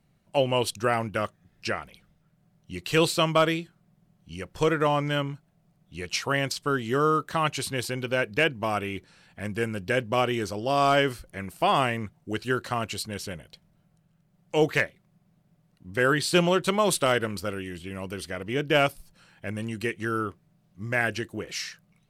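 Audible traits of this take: noise floor -66 dBFS; spectral tilt -4.5 dB/octave

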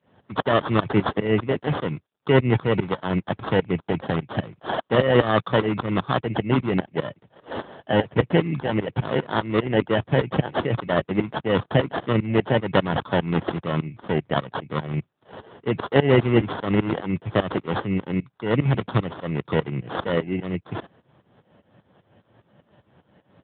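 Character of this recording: tremolo saw up 5 Hz, depth 95%; aliases and images of a low sample rate 2.4 kHz, jitter 0%; AMR-NB

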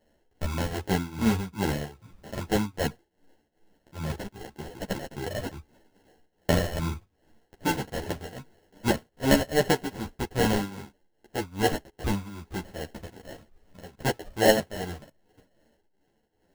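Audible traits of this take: aliases and images of a low sample rate 1.2 kHz, jitter 0%; tremolo triangle 2.5 Hz, depth 85%; a shimmering, thickened sound

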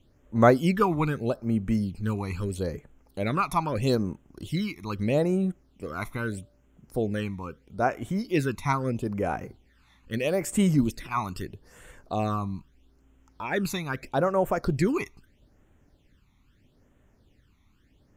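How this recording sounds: phasing stages 12, 0.78 Hz, lowest notch 500–4700 Hz

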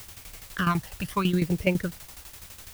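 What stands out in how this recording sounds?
phasing stages 12, 0.79 Hz, lowest notch 360–1300 Hz; a quantiser's noise floor 8-bit, dither triangular; tremolo saw down 12 Hz, depth 75%

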